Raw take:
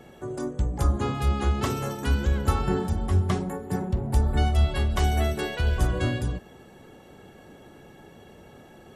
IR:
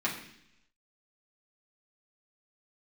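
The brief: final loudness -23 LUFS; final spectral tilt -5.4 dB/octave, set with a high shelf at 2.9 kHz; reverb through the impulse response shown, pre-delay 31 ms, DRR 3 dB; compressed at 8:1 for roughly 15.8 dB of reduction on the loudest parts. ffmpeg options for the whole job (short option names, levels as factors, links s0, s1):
-filter_complex "[0:a]highshelf=f=2900:g=6,acompressor=threshold=0.0224:ratio=8,asplit=2[s0][s1];[1:a]atrim=start_sample=2205,adelay=31[s2];[s1][s2]afir=irnorm=-1:irlink=0,volume=0.282[s3];[s0][s3]amix=inputs=2:normalize=0,volume=5.31"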